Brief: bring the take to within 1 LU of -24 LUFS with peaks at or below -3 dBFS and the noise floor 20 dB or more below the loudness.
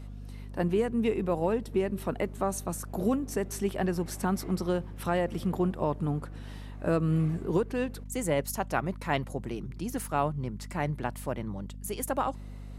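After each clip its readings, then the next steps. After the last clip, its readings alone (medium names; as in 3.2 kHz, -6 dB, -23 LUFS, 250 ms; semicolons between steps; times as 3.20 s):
hum 50 Hz; highest harmonic 250 Hz; hum level -39 dBFS; loudness -31.0 LUFS; peak level -12.0 dBFS; loudness target -24.0 LUFS
-> hum notches 50/100/150/200/250 Hz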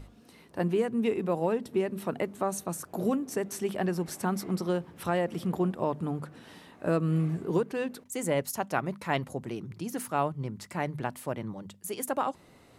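hum not found; loudness -31.5 LUFS; peak level -12.0 dBFS; loudness target -24.0 LUFS
-> trim +7.5 dB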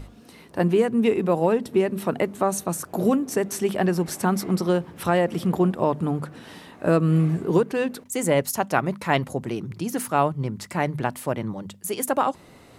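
loudness -24.0 LUFS; peak level -4.5 dBFS; noise floor -49 dBFS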